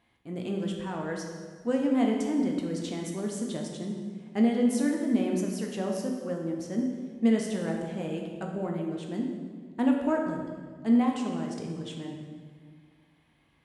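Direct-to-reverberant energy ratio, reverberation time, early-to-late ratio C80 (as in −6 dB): 0.5 dB, 1.8 s, 4.5 dB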